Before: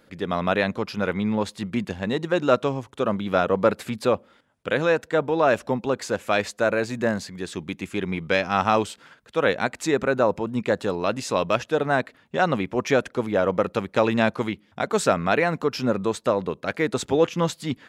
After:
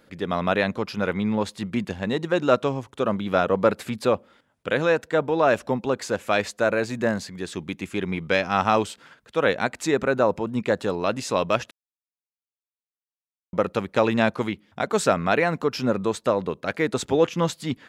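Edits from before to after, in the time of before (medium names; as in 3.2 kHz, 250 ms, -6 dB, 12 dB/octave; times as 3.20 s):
11.71–13.53 s: mute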